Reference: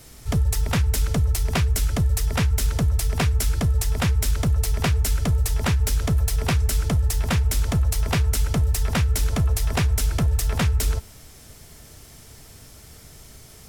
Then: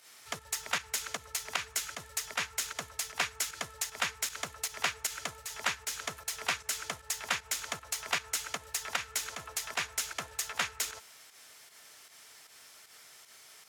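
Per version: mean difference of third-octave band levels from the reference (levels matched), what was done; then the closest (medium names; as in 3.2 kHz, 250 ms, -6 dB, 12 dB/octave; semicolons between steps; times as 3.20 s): 8.0 dB: dynamic bell 6.7 kHz, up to +7 dB, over -50 dBFS, Q 6.3; volume shaper 154 bpm, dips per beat 1, -9 dB, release 108 ms; high-pass 1.5 kHz 12 dB/octave; tilt EQ -3 dB/octave; trim +2.5 dB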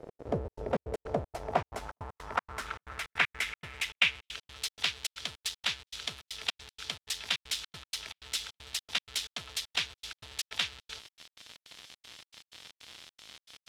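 12.0 dB: time-frequency box 2.66–4.31 s, 2–4 kHz +6 dB; in parallel at -11 dB: Schmitt trigger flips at -38.5 dBFS; on the sum: band-pass sweep 500 Hz -> 3.5 kHz, 0.81–4.62 s; trance gate "x.xxx.xx.x.x" 157 bpm -60 dB; trim +3 dB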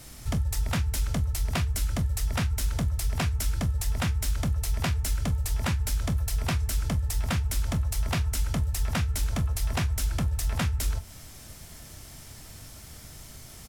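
2.5 dB: peaking EQ 430 Hz -8 dB 0.31 oct; compression 2.5:1, threshold -27 dBFS, peak gain reduction 7.5 dB; vibrato 12 Hz 10 cents; early reflections 24 ms -12 dB, 44 ms -17 dB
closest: third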